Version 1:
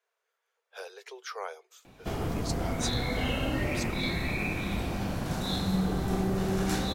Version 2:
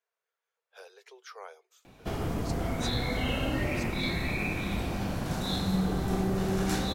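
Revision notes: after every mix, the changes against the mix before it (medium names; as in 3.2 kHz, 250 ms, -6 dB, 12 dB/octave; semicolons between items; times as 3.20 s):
speech -7.5 dB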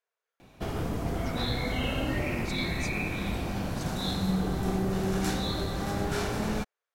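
background: entry -1.45 s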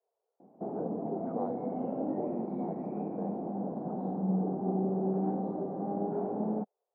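speech +11.0 dB; master: add Chebyshev band-pass 190–800 Hz, order 3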